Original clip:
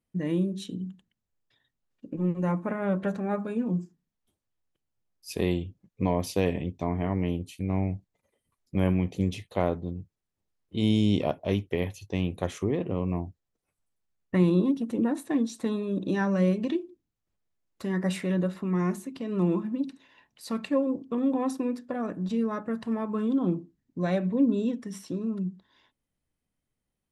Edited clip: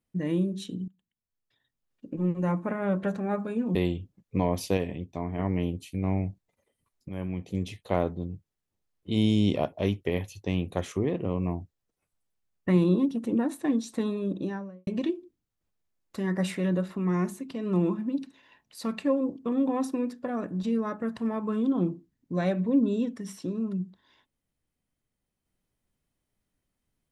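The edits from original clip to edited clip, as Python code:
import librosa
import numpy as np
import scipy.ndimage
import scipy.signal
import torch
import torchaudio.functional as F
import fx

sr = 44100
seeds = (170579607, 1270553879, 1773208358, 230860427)

y = fx.studio_fade_out(x, sr, start_s=15.83, length_s=0.7)
y = fx.edit(y, sr, fx.fade_in_from(start_s=0.88, length_s=1.19, floor_db=-21.0),
    fx.cut(start_s=3.75, length_s=1.66),
    fx.clip_gain(start_s=6.43, length_s=0.62, db=-4.0),
    fx.fade_in_from(start_s=8.75, length_s=0.85, floor_db=-13.5), tone=tone)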